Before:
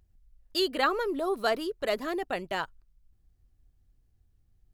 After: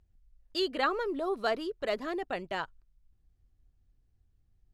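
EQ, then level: distance through air 57 m; -2.5 dB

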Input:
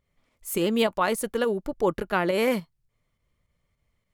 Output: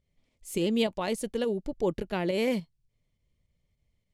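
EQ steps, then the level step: Bessel low-pass 6.8 kHz, order 2; peaking EQ 520 Hz -2.5 dB 2.3 oct; peaking EQ 1.3 kHz -14 dB 1.1 oct; 0.0 dB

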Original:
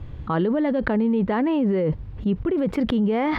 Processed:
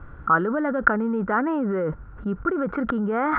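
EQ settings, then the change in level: resonant low-pass 1.4 kHz, resonance Q 14; peaking EQ 100 Hz -8 dB 1.1 oct; -3.0 dB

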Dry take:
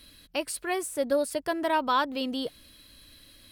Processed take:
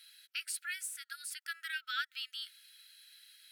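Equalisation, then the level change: brick-wall FIR high-pass 1.3 kHz; -4.0 dB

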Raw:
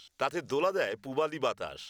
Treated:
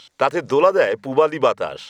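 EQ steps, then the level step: ten-band graphic EQ 125 Hz +11 dB, 250 Hz +8 dB, 500 Hz +12 dB, 1 kHz +11 dB, 2 kHz +9 dB, 4 kHz +5 dB, 8 kHz +6 dB; -1.0 dB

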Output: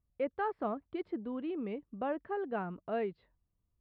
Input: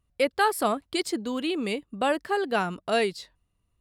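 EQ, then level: distance through air 500 m; tape spacing loss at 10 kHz 30 dB; -6.5 dB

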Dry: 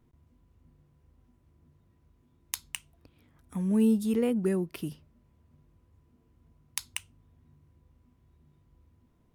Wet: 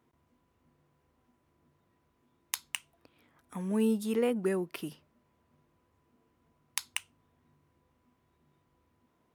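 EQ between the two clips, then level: high-pass 980 Hz 6 dB/octave; treble shelf 2.1 kHz -9 dB; +8.0 dB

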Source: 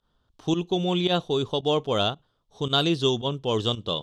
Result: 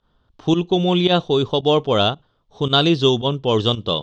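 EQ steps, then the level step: dynamic bell 5.6 kHz, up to +4 dB, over -42 dBFS, Q 1.1; distance through air 130 m; +7.5 dB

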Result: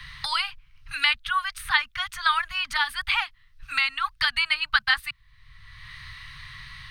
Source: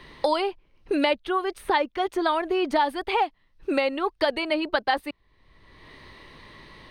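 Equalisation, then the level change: Chebyshev band-stop 130–1300 Hz, order 3; +8.0 dB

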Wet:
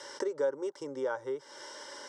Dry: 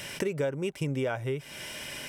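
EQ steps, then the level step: cabinet simulation 300–7000 Hz, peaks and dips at 580 Hz +9 dB, 880 Hz +9 dB, 5.4 kHz +4 dB; static phaser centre 680 Hz, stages 6; -2.0 dB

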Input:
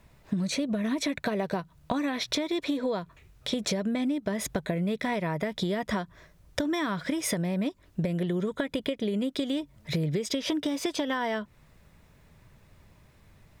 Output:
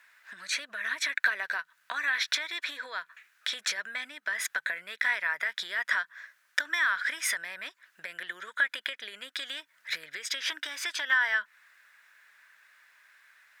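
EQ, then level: resonant high-pass 1.6 kHz, resonance Q 5.2; 0.0 dB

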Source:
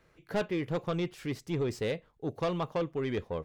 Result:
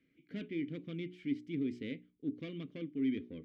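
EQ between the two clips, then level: vowel filter i; bass shelf 290 Hz +9 dB; hum notches 60/120/180/240/300/360/420 Hz; +2.5 dB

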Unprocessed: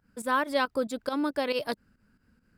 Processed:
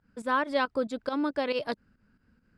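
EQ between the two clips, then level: distance through air 88 m; 0.0 dB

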